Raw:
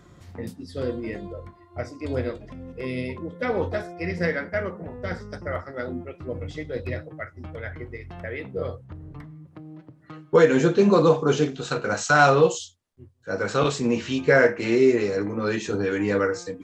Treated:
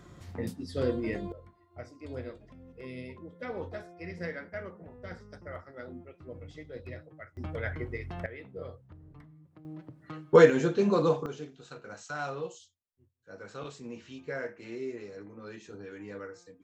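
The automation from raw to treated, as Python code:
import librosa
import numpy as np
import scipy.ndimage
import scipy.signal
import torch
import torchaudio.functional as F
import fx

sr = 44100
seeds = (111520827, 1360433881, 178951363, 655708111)

y = fx.gain(x, sr, db=fx.steps((0.0, -1.0), (1.32, -12.5), (7.37, 0.0), (8.26, -12.0), (9.65, -1.0), (10.5, -8.0), (11.26, -19.5)))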